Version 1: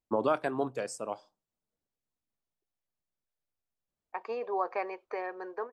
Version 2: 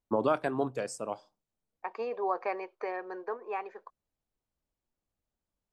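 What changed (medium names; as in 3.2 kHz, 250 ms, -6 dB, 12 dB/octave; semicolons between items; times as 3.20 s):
second voice: entry -2.30 s; master: add bass shelf 170 Hz +5.5 dB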